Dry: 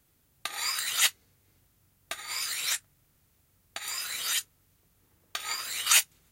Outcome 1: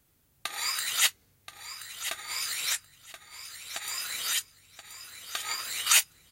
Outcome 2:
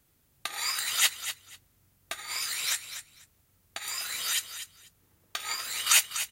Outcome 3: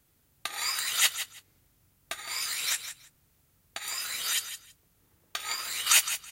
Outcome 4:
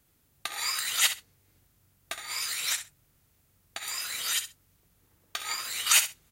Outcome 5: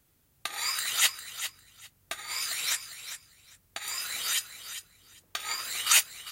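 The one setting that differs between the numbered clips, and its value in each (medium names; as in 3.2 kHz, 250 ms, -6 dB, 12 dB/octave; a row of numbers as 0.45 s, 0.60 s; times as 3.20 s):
feedback delay, time: 1028 ms, 245 ms, 163 ms, 65 ms, 401 ms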